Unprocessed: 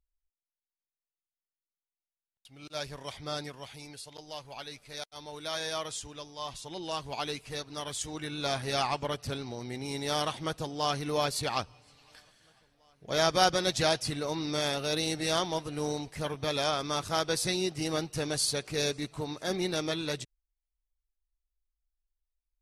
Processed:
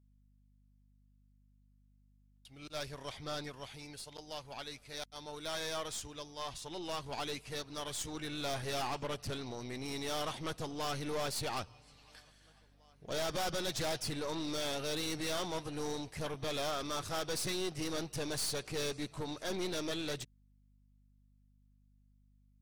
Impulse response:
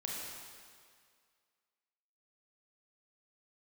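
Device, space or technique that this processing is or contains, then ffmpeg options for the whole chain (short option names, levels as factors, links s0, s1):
valve amplifier with mains hum: -filter_complex "[0:a]asettb=1/sr,asplit=3[s0][s1][s2];[s0]atrim=end=2.924[s3];[s1]atrim=start=2.92:end=3.93,asetpts=PTS-STARTPTS,afade=t=in:d=0.004:c=qsin,afade=t=out:st=1.006:d=0.004:c=qsin,acrossover=split=6200[s4][s5];[s5]acompressor=threshold=0.00158:ratio=4:attack=1:release=60[s6];[s4][s6]amix=inputs=2:normalize=0[s7];[s2]atrim=start=3.926[s8];[s3][s7]acrossfade=d=0.004:c1=hsin:c2=qsin[s9];[s9][s8]acrossfade=d=0.004:c1=qsin:c2=hsin,aeval=exprs='(tanh(44.7*val(0)+0.5)-tanh(0.5))/44.7':c=same,aeval=exprs='val(0)+0.000501*(sin(2*PI*50*n/s)+sin(2*PI*2*50*n/s)/2+sin(2*PI*3*50*n/s)/3+sin(2*PI*4*50*n/s)/4+sin(2*PI*5*50*n/s)/5)':c=same"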